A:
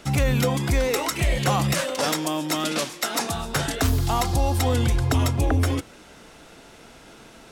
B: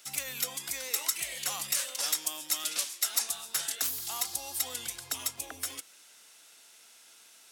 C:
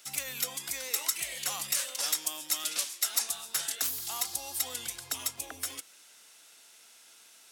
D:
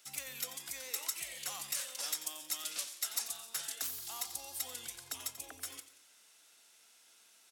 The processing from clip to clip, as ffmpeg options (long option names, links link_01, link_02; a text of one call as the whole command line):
ffmpeg -i in.wav -af "aderivative" out.wav
ffmpeg -i in.wav -af anull out.wav
ffmpeg -i in.wav -af "aecho=1:1:89|178|267|356:0.211|0.0909|0.0391|0.0168,volume=-7.5dB" out.wav